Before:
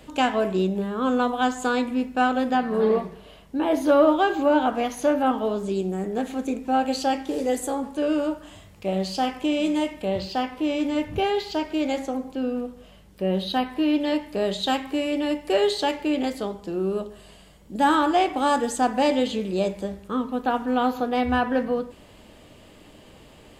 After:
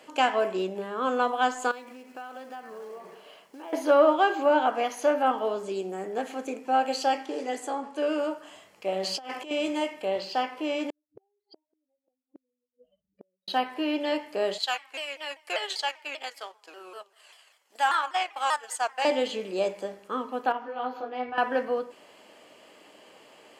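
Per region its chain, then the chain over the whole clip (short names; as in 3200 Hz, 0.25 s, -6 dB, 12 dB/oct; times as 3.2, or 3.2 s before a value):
1.71–3.73 low shelf 190 Hz -4.5 dB + compressor 16:1, threshold -34 dBFS + companded quantiser 6-bit
7.26–7.96 air absorption 53 m + notch 520 Hz, Q 7.3
9.03–9.51 notches 60/120/180/240/300 Hz + negative-ratio compressor -30 dBFS, ratio -0.5
10.9–13.48 spectral contrast raised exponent 3.1 + flipped gate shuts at -27 dBFS, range -41 dB + upward expander, over -57 dBFS
14.58–19.05 HPF 1100 Hz + transient shaper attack +3 dB, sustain -9 dB + shaped vibrato saw down 5.1 Hz, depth 160 cents
20.52–21.38 running mean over 5 samples + compressor 2:1, threshold -26 dBFS + detuned doubles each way 20 cents
whole clip: HPF 450 Hz 12 dB/oct; high shelf 9100 Hz -7.5 dB; notch 3700 Hz, Q 8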